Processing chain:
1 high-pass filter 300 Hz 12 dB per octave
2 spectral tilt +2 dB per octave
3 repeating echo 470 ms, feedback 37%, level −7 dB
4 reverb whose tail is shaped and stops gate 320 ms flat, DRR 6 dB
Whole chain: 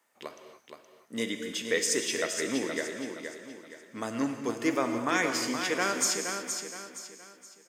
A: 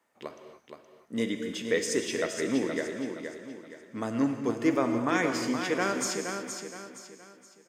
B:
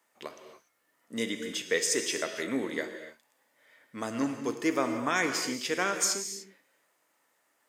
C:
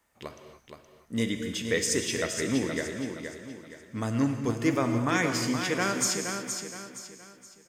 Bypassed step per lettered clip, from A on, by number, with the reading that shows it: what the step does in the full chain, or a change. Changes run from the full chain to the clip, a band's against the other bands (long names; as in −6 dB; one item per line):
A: 2, 8 kHz band −6.5 dB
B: 3, echo-to-direct ratio −2.5 dB to −6.0 dB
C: 1, 125 Hz band +14.0 dB